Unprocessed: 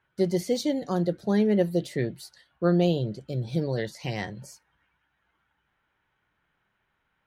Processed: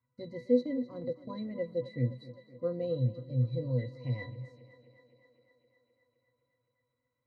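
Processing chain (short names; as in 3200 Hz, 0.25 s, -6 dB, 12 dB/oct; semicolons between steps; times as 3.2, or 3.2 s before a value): octave resonator B, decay 0.16 s; 0.59–1.56 transient shaper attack 0 dB, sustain -8 dB; thinning echo 0.258 s, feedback 73%, high-pass 160 Hz, level -16 dB; gain +4.5 dB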